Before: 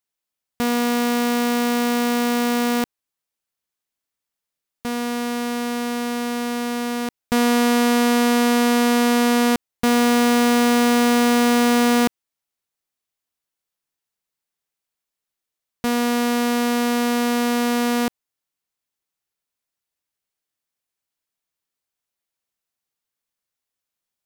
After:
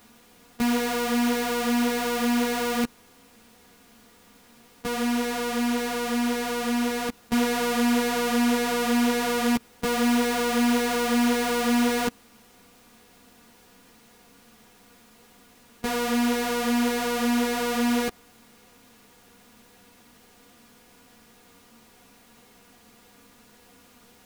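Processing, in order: spectral levelling over time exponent 0.4; three-phase chorus; trim -3 dB

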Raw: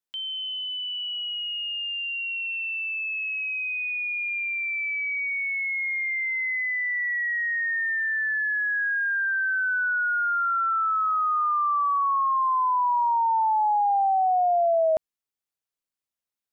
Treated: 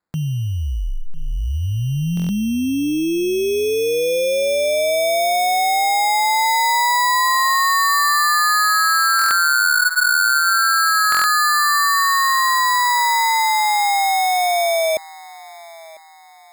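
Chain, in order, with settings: in parallel at +2 dB: gain riding; on the sum: low-pass 2 kHz 12 dB/octave; compression 4:1, threshold -20 dBFS, peak gain reduction 5.5 dB; tilt EQ +2.5 dB/octave; on a send: thinning echo 999 ms, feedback 46%, high-pass 420 Hz, level -20.5 dB; on the sum: sample-and-hold 15×; buffer glitch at 2.15/9.17/11.10 s, samples 1024, times 5; trim +4.5 dB

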